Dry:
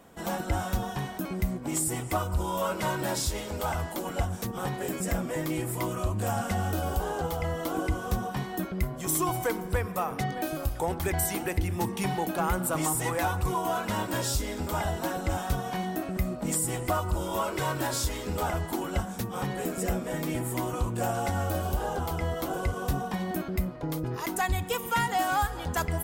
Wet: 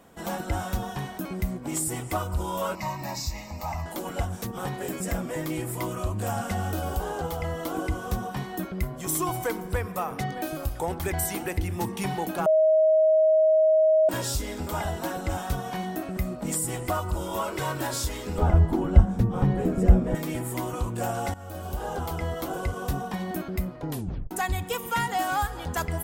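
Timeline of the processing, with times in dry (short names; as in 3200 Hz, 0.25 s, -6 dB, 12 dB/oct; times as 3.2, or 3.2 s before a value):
2.75–3.86 fixed phaser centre 2200 Hz, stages 8
12.46–14.09 bleep 630 Hz -16 dBFS
18.38–20.15 tilt -4 dB/oct
21.34–21.96 fade in, from -18 dB
23.89 tape stop 0.42 s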